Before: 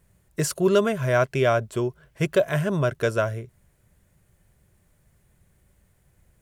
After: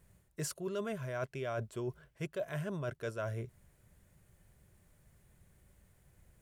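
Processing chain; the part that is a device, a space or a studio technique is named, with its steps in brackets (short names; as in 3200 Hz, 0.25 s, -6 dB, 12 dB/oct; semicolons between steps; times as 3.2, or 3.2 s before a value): compression on the reversed sound (reverse; compressor 6:1, threshold -33 dBFS, peak gain reduction 17.5 dB; reverse); gain -3 dB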